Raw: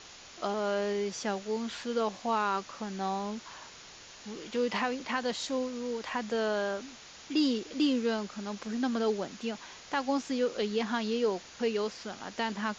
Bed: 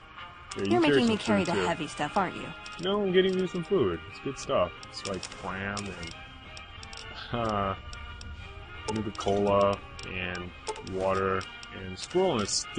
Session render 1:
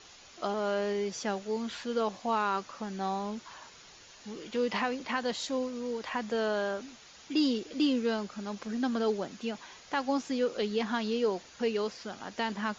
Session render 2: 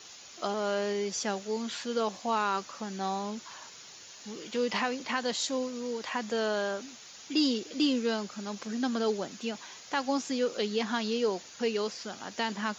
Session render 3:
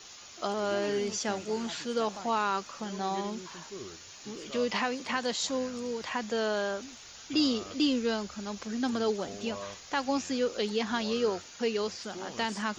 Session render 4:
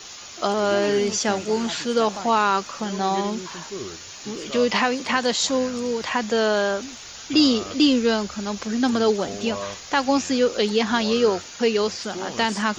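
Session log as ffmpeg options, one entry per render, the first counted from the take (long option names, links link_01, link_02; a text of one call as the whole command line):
ffmpeg -i in.wav -af "afftdn=noise_reduction=6:noise_floor=-51" out.wav
ffmpeg -i in.wav -af "highpass=100,aemphasis=mode=production:type=50kf" out.wav
ffmpeg -i in.wav -i bed.wav -filter_complex "[1:a]volume=-17.5dB[link_01];[0:a][link_01]amix=inputs=2:normalize=0" out.wav
ffmpeg -i in.wav -af "volume=9.5dB" out.wav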